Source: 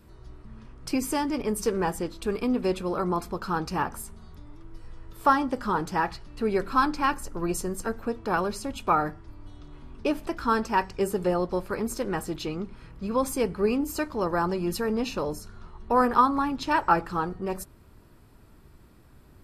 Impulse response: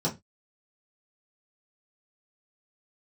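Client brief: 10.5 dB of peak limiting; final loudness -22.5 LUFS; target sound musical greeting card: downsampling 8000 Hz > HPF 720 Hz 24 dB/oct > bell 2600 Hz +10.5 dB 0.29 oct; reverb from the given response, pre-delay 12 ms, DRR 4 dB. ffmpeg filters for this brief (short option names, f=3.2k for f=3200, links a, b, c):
-filter_complex "[0:a]alimiter=limit=-18dB:level=0:latency=1,asplit=2[a][b];[1:a]atrim=start_sample=2205,adelay=12[c];[b][c]afir=irnorm=-1:irlink=0,volume=-12.5dB[d];[a][d]amix=inputs=2:normalize=0,aresample=8000,aresample=44100,highpass=f=720:w=0.5412,highpass=f=720:w=1.3066,equalizer=f=2.6k:t=o:w=0.29:g=10.5,volume=9.5dB"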